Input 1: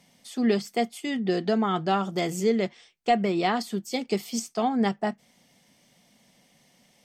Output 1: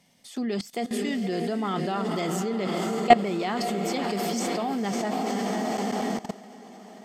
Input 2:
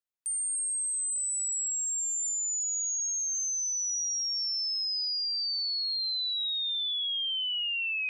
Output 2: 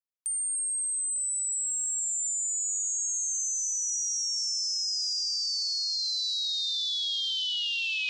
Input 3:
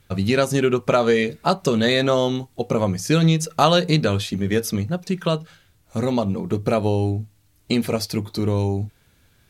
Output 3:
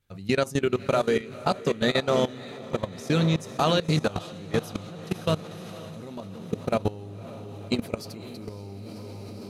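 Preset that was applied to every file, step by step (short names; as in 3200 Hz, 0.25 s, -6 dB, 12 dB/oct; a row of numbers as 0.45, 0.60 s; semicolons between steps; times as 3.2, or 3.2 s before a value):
diffused feedback echo 0.539 s, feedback 70%, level -8 dB; level quantiser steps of 18 dB; match loudness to -27 LUFS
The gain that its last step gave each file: +8.5, +6.0, -3.0 dB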